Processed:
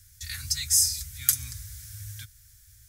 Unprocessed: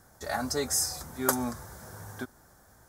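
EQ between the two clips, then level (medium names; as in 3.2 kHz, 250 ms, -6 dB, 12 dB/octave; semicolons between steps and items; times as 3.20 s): elliptic band-stop 100–2400 Hz, stop band 80 dB; +7.5 dB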